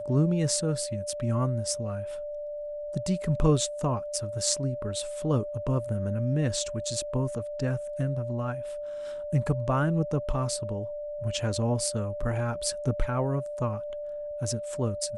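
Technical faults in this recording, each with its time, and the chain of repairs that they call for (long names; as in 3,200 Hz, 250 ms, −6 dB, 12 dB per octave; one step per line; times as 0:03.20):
whistle 590 Hz −33 dBFS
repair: notch filter 590 Hz, Q 30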